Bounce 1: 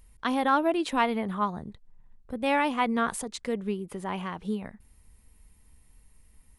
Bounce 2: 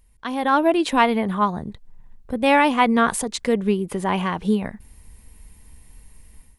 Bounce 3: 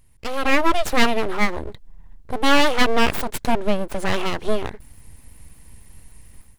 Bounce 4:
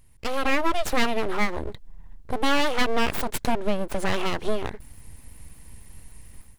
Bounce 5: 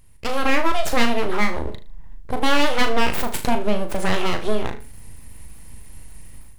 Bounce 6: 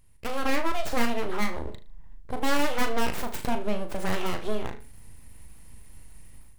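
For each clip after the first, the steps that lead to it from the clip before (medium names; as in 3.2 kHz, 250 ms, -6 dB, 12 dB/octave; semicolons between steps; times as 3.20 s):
level rider gain up to 13 dB; band-stop 1.3 kHz, Q 15; trim -2 dB
full-wave rectifier; trim +3 dB
compression 2:1, threshold -20 dBFS, peak gain reduction 7 dB
on a send: flutter echo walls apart 6.5 m, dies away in 0.31 s; on the sum: endings held to a fixed fall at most 150 dB/s; trim +3 dB
tracing distortion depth 0.15 ms; trim -7.5 dB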